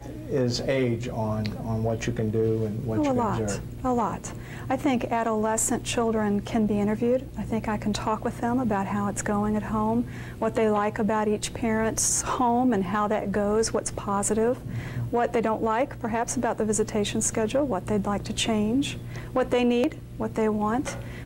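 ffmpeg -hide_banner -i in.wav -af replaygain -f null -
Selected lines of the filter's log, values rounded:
track_gain = +7.2 dB
track_peak = 0.167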